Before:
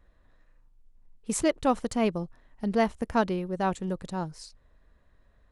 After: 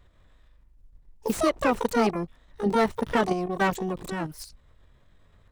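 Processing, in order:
output level in coarse steps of 9 dB
pitch-shifted copies added +12 semitones −2 dB
slew-rate limiting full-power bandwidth 94 Hz
level +5 dB

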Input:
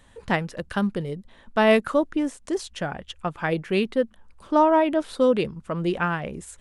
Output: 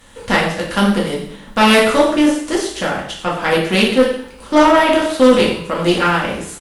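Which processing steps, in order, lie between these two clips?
compressing power law on the bin magnitudes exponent 0.7
on a send: single-tap delay 93 ms −14 dB
on the sum: coupled-rooms reverb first 0.58 s, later 1.8 s, from −24 dB, DRR −5 dB
tube saturation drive 9 dB, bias 0.4
level +5.5 dB

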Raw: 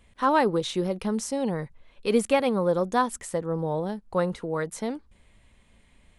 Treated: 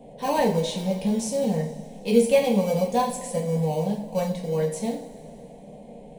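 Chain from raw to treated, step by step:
in parallel at −12 dB: decimation without filtering 25×
on the sum: noise in a band 91–630 Hz −44 dBFS
phaser with its sweep stopped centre 350 Hz, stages 6
coupled-rooms reverb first 0.4 s, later 2.8 s, from −18 dB, DRR −2 dB
level −1.5 dB

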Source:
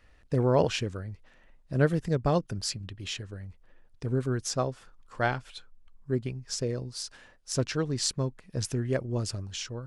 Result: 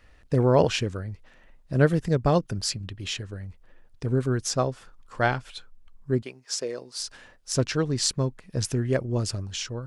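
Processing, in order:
0:06.22–0:07.00: high-pass filter 440 Hz 12 dB per octave
level +4 dB

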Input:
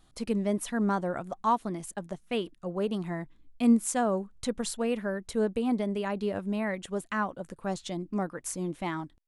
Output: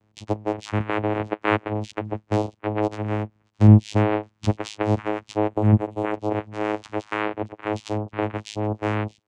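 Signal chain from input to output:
compressor on every frequency bin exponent 0.6
noise reduction from a noise print of the clip's start 28 dB
0:06.59–0:07.12: healed spectral selection 2,100–5,600 Hz both
on a send: delay with a high-pass on its return 624 ms, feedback 42%, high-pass 4,400 Hz, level −20 dB
on the sum: channel vocoder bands 4, saw 106 Hz
0:05.49–0:06.14: parametric band 5,200 Hz −15 dB 0.82 octaves
in parallel at −2 dB: downward compressor, threshold −37 dBFS, peak gain reduction 21.5 dB
on the sum: level +7 dB

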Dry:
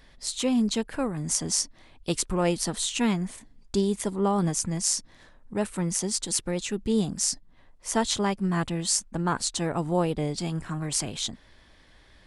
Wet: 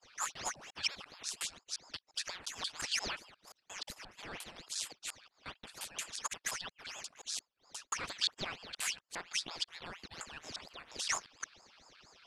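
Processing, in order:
reversed piece by piece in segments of 176 ms
in parallel at −1 dB: downward compressor, threshold −37 dBFS, peak gain reduction 17 dB
on the sum: pair of resonant band-passes 2,900 Hz, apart 0.87 octaves
ring modulator whose carrier an LFO sweeps 1,700 Hz, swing 80%, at 4.3 Hz
level +3.5 dB

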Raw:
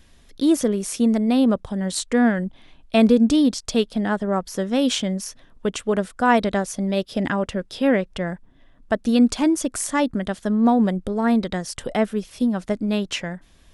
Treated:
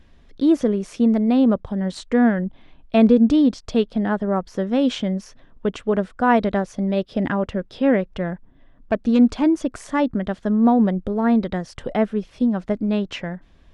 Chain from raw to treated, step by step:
0:08.06–0:09.28: phase distortion by the signal itself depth 0.098 ms
head-to-tape spacing loss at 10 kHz 22 dB
level +2 dB

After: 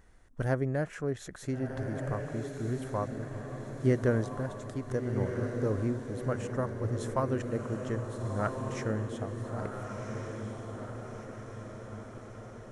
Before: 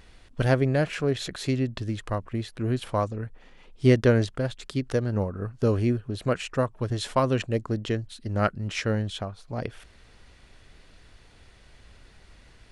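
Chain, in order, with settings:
flat-topped bell 3,400 Hz −11 dB 1.3 octaves
on a send: feedback delay with all-pass diffusion 1,400 ms, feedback 58%, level −5 dB
on the sum: level −7.5 dB

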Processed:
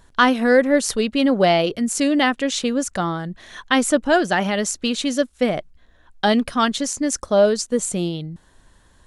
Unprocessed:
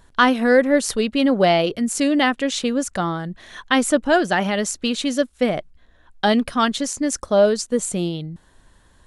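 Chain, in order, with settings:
parametric band 6,200 Hz +2 dB

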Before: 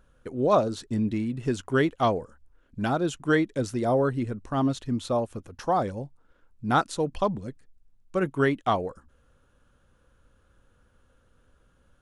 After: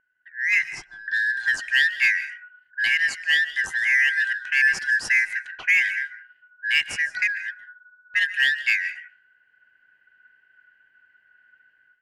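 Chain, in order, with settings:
band-splitting scrambler in four parts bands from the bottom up 4123
automatic gain control gain up to 14.5 dB
in parallel at −6 dB: soft clipping −16.5 dBFS, distortion −8 dB
0:00.62–0:01.08: on the sum: phaser with its sweep stopped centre 360 Hz, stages 8
on a send at −14.5 dB: convolution reverb RT60 0.35 s, pre-delay 110 ms
on the sum: low-pass that shuts in the quiet parts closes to 950 Hz, open at −13 dBFS
level −8.5 dB

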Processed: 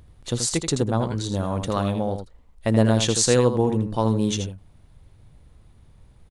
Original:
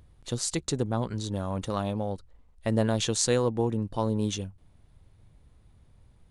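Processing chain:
single-tap delay 81 ms −8 dB
level +5.5 dB

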